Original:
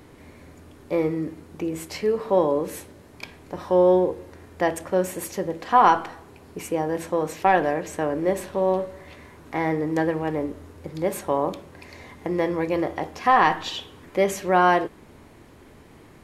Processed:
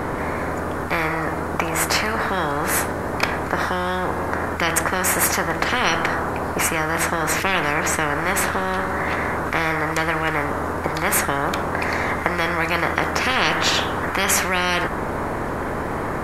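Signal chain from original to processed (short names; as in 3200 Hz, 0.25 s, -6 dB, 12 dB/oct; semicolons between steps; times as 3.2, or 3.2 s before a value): resonant high shelf 2100 Hz -11 dB, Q 1.5; spectral compressor 10:1; gain +1 dB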